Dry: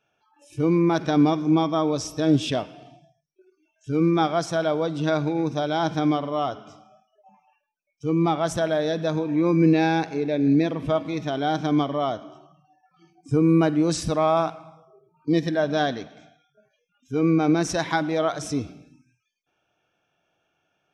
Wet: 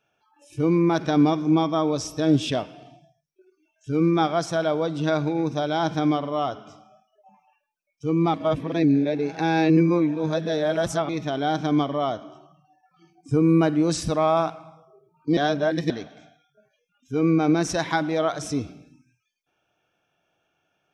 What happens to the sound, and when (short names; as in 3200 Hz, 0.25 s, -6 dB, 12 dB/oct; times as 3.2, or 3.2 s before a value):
8.34–11.09 reverse
15.37–15.9 reverse